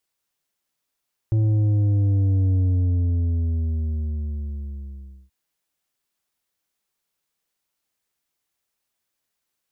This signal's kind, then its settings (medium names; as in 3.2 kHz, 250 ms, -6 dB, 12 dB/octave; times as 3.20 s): sub drop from 110 Hz, over 3.98 s, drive 7 dB, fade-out 2.76 s, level -17 dB